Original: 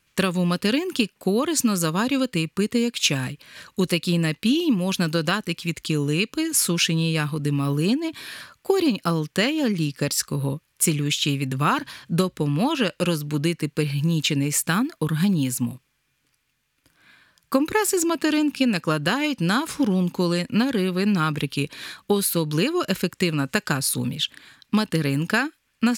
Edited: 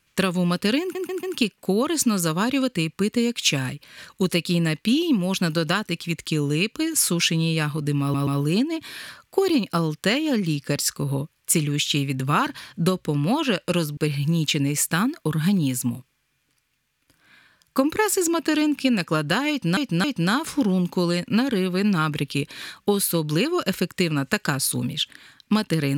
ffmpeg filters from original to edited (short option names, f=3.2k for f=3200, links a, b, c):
-filter_complex "[0:a]asplit=9[a][b][c][d][e][f][g][h][i];[a]atrim=end=0.952[j];[b]atrim=start=0.808:end=0.952[k];[c]atrim=start=0.808:end=0.952[l];[d]atrim=start=0.808:end=7.722[m];[e]atrim=start=7.588:end=7.722[n];[f]atrim=start=7.588:end=13.292[o];[g]atrim=start=13.728:end=19.532[p];[h]atrim=start=19.258:end=19.532[q];[i]atrim=start=19.258[r];[j][k]acrossfade=d=0.004:c1=hsin:c2=hsin[s];[s][l]acrossfade=d=0.004:c1=hsin:c2=hsin[t];[t][m]acrossfade=d=0.004:c1=hsin:c2=hsin[u];[u][n]acrossfade=d=0.004:c1=hsin:c2=hsin[v];[v][o]acrossfade=d=0.004:c1=hsin:c2=hsin[w];[w][p]acrossfade=d=0.004:c1=hsin:c2=hsin[x];[x][q]acrossfade=d=0.004:c1=hsin:c2=hsin[y];[y][r]acrossfade=d=0.004:c1=hsin:c2=hsin"